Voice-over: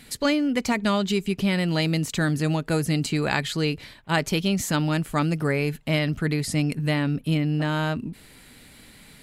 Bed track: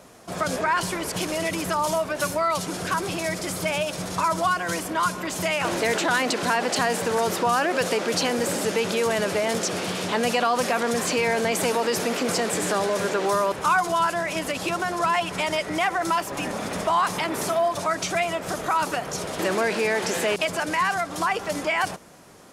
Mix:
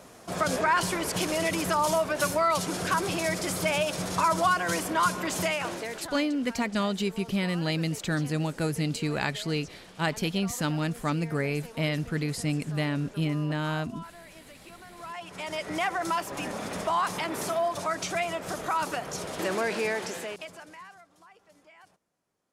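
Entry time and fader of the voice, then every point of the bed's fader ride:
5.90 s, -5.0 dB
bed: 5.4 s -1 dB
6.3 s -23 dB
14.85 s -23 dB
15.71 s -5 dB
19.88 s -5 dB
21.2 s -31.5 dB

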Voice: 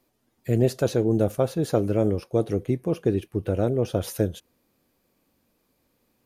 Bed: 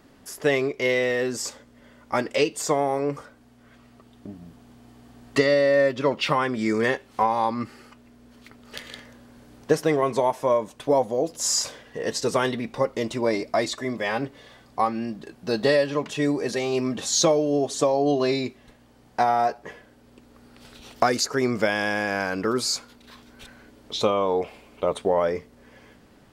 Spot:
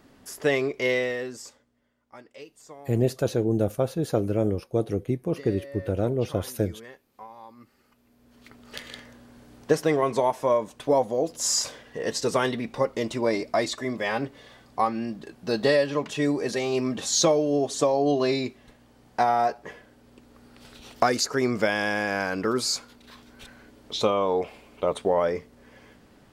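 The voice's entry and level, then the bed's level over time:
2.40 s, -2.0 dB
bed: 0.95 s -1.5 dB
1.94 s -22.5 dB
7.56 s -22.5 dB
8.53 s -1 dB

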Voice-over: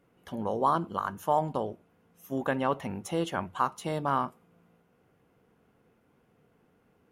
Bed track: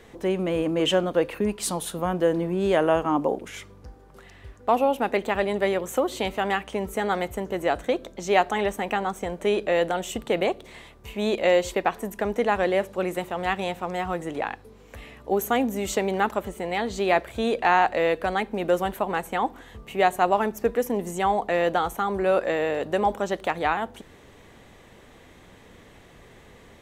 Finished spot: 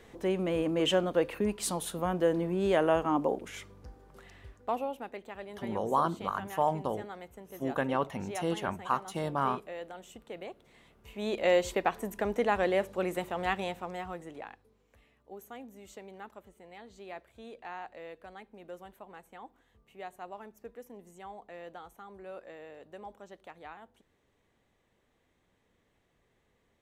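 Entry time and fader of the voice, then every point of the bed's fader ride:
5.30 s, -2.0 dB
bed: 4.38 s -5 dB
5.18 s -19 dB
10.6 s -19 dB
11.52 s -5 dB
13.52 s -5 dB
15.09 s -23 dB

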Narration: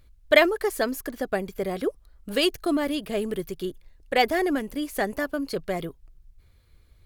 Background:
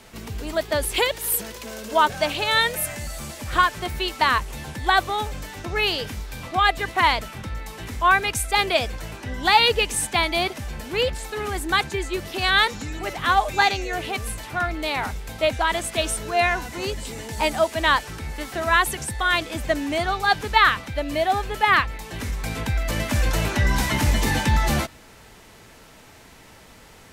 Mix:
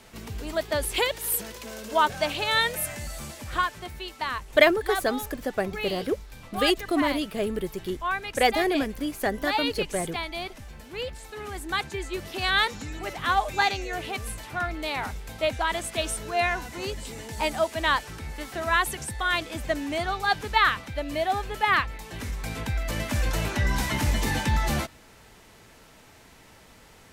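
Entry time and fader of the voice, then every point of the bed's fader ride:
4.25 s, -0.5 dB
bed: 3.23 s -3.5 dB
4.02 s -11 dB
11.01 s -11 dB
12.28 s -4.5 dB

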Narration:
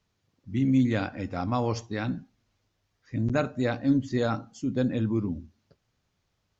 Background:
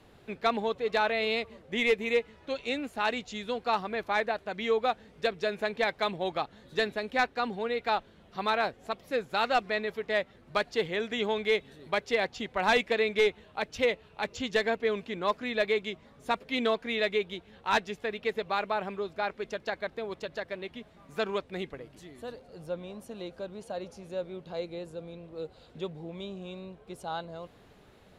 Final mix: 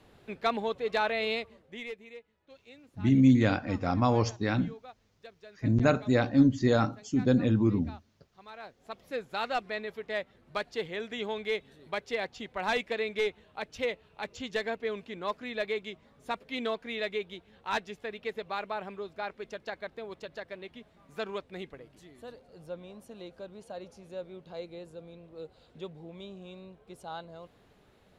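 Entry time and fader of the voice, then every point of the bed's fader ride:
2.50 s, +2.0 dB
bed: 1.32 s -1.5 dB
2.15 s -21 dB
8.48 s -21 dB
9.01 s -5 dB

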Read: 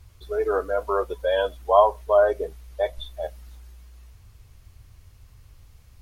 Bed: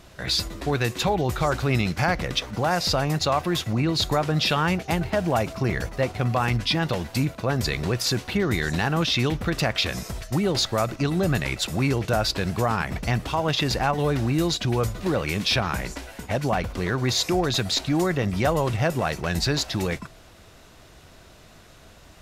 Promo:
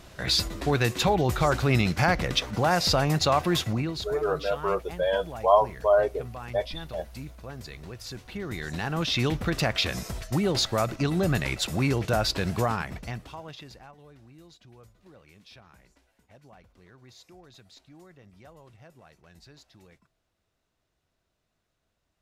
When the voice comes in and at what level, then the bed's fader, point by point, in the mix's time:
3.75 s, -3.0 dB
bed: 3.65 s 0 dB
4.16 s -16.5 dB
8 s -16.5 dB
9.27 s -2 dB
12.63 s -2 dB
14.03 s -29 dB

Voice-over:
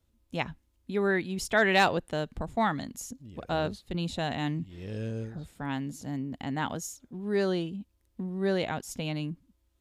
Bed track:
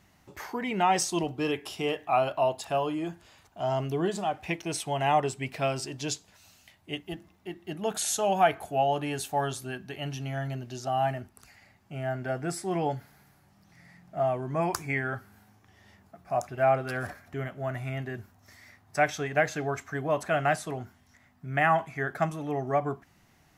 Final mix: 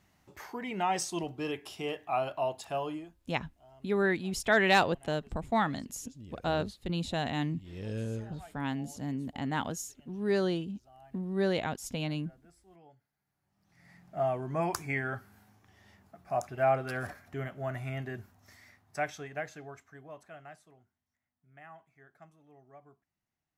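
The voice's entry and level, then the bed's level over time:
2.95 s, -1.0 dB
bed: 2.96 s -6 dB
3.19 s -29.5 dB
13.13 s -29.5 dB
13.92 s -3 dB
18.51 s -3 dB
20.86 s -28 dB

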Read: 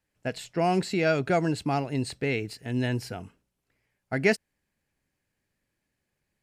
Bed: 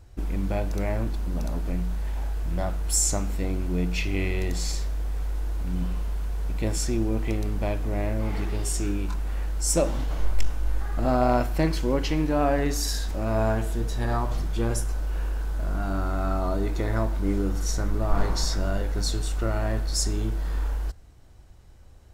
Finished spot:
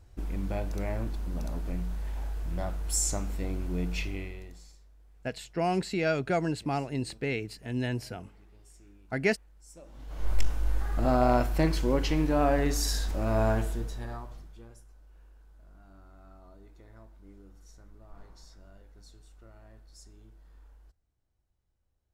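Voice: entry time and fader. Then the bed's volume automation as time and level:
5.00 s, -3.5 dB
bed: 4.02 s -5.5 dB
4.79 s -29 dB
9.81 s -29 dB
10.32 s -2 dB
13.6 s -2 dB
14.78 s -27.5 dB

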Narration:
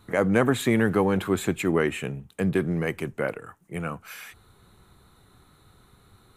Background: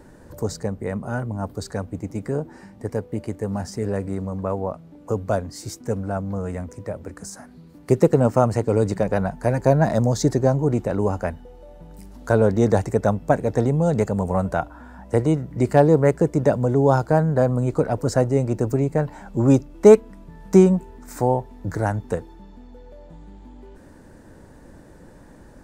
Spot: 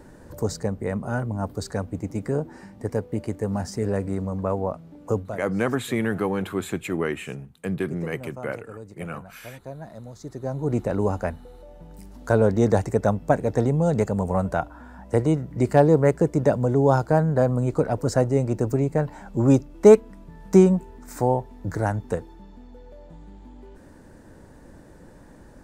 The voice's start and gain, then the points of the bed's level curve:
5.25 s, -3.0 dB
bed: 5.18 s 0 dB
5.45 s -21 dB
10.19 s -21 dB
10.77 s -1.5 dB

